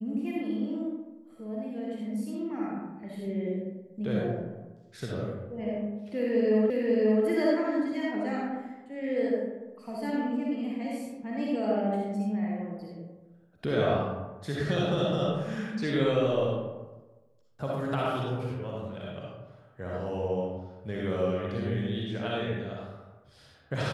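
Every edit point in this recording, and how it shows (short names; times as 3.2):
6.7 repeat of the last 0.54 s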